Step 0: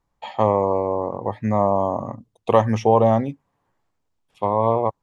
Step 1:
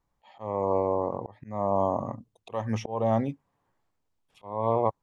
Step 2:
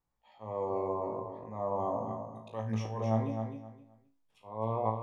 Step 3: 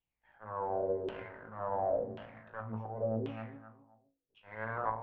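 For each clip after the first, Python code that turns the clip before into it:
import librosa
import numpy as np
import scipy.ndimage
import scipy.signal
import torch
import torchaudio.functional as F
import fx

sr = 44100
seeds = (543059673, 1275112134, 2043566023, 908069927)

y1 = fx.auto_swell(x, sr, attack_ms=384.0)
y1 = y1 * librosa.db_to_amplitude(-3.5)
y2 = fx.comb_fb(y1, sr, f0_hz=55.0, decay_s=0.35, harmonics='all', damping=0.0, mix_pct=90)
y2 = fx.echo_feedback(y2, sr, ms=261, feedback_pct=22, wet_db=-7.0)
y3 = fx.lower_of_two(y2, sr, delay_ms=0.31)
y3 = fx.filter_lfo_lowpass(y3, sr, shape='saw_down', hz=0.92, low_hz=380.0, high_hz=3100.0, q=5.1)
y3 = y3 * librosa.db_to_amplitude(-7.0)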